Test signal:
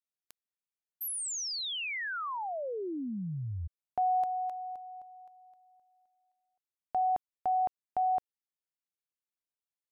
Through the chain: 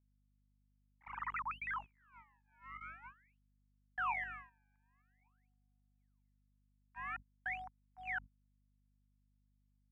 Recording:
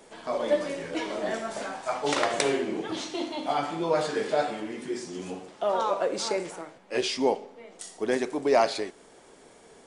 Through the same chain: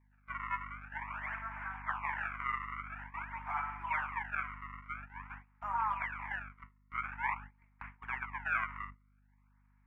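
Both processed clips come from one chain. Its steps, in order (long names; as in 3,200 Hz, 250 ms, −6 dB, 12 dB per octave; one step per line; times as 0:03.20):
sample-and-hold swept by an LFO 31×, swing 160% 0.48 Hz
elliptic band-pass filter 930–2,300 Hz, stop band 40 dB
mains hum 50 Hz, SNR 10 dB
noise gate −45 dBFS, range −18 dB
level −1.5 dB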